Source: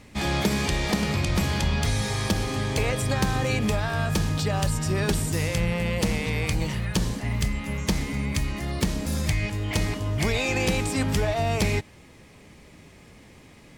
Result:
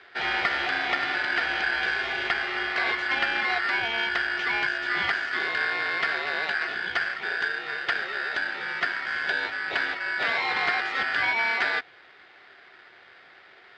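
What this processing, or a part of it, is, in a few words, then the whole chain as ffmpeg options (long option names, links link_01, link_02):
ring modulator pedal into a guitar cabinet: -af "aeval=exprs='val(0)*sgn(sin(2*PI*1600*n/s))':channel_layout=same,highpass=78,equalizer=frequency=380:width_type=q:width=4:gain=10,equalizer=frequency=720:width_type=q:width=4:gain=10,equalizer=frequency=2200:width_type=q:width=4:gain=8,equalizer=frequency=3100:width_type=q:width=4:gain=7,lowpass=frequency=4000:width=0.5412,lowpass=frequency=4000:width=1.3066,volume=-4.5dB"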